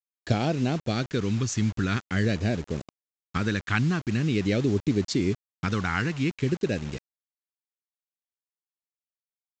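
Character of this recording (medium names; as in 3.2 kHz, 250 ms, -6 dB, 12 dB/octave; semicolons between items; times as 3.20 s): phasing stages 2, 0.46 Hz, lowest notch 580–1200 Hz; a quantiser's noise floor 8-bit, dither none; µ-law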